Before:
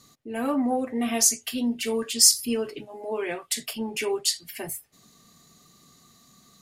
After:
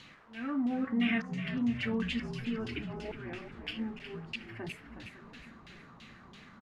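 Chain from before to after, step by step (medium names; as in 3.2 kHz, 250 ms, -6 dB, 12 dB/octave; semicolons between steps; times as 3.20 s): high-order bell 690 Hz -12 dB; slow attack 630 ms; in parallel at +2.5 dB: compression, threshold -37 dBFS, peak gain reduction 12 dB; on the sum: frequency-shifting echo 365 ms, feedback 52%, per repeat -55 Hz, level -8.5 dB; word length cut 8-bit, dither triangular; on a send: filtered feedback delay 553 ms, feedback 71%, level -17 dB; on the sum: LFO low-pass saw down 3 Hz 920–3200 Hz; trim -5 dB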